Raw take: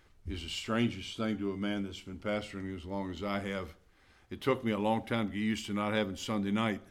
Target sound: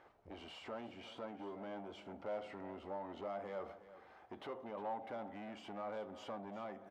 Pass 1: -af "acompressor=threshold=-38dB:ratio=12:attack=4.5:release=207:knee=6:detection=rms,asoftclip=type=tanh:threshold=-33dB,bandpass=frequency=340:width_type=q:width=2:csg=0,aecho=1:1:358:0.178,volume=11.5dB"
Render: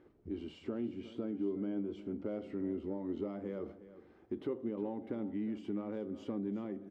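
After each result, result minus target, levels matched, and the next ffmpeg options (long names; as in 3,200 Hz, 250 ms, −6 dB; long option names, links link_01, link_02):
1,000 Hz band −15.0 dB; soft clipping: distortion −13 dB
-af "acompressor=threshold=-38dB:ratio=12:attack=4.5:release=207:knee=6:detection=rms,asoftclip=type=tanh:threshold=-33dB,bandpass=frequency=730:width_type=q:width=2:csg=0,aecho=1:1:358:0.178,volume=11.5dB"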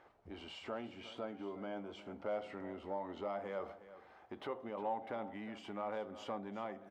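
soft clipping: distortion −13 dB
-af "acompressor=threshold=-38dB:ratio=12:attack=4.5:release=207:knee=6:detection=rms,asoftclip=type=tanh:threshold=-43dB,bandpass=frequency=730:width_type=q:width=2:csg=0,aecho=1:1:358:0.178,volume=11.5dB"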